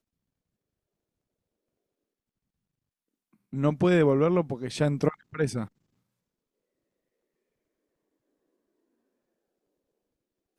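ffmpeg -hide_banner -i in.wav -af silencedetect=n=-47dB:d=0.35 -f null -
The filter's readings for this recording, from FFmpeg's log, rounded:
silence_start: 0.00
silence_end: 3.53 | silence_duration: 3.53
silence_start: 5.68
silence_end: 10.58 | silence_duration: 4.90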